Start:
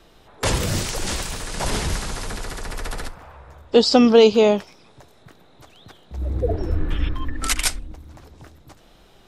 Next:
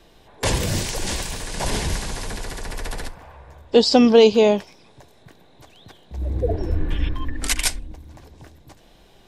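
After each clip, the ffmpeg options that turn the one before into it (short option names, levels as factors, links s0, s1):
-af "bandreject=f=1300:w=5.6"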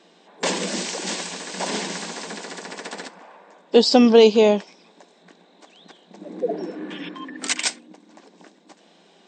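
-af "afftfilt=real='re*between(b*sr/4096,170,8600)':imag='im*between(b*sr/4096,170,8600)':win_size=4096:overlap=0.75"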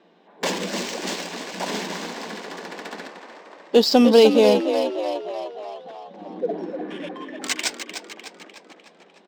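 -filter_complex "[0:a]asplit=9[s0][s1][s2][s3][s4][s5][s6][s7][s8];[s1]adelay=301,afreqshift=46,volume=0.398[s9];[s2]adelay=602,afreqshift=92,volume=0.243[s10];[s3]adelay=903,afreqshift=138,volume=0.148[s11];[s4]adelay=1204,afreqshift=184,volume=0.0902[s12];[s5]adelay=1505,afreqshift=230,volume=0.055[s13];[s6]adelay=1806,afreqshift=276,volume=0.0335[s14];[s7]adelay=2107,afreqshift=322,volume=0.0204[s15];[s8]adelay=2408,afreqshift=368,volume=0.0124[s16];[s0][s9][s10][s11][s12][s13][s14][s15][s16]amix=inputs=9:normalize=0,adynamicsmooth=sensitivity=5:basefreq=2700,volume=0.891"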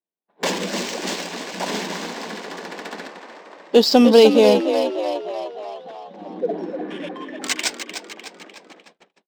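-af "agate=range=0.00631:threshold=0.00355:ratio=16:detection=peak,volume=1.26"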